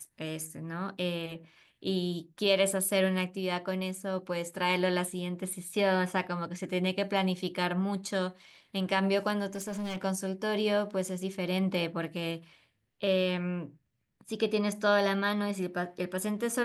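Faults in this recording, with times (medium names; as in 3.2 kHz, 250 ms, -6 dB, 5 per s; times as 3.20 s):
9.55–9.97 s: clipped -32 dBFS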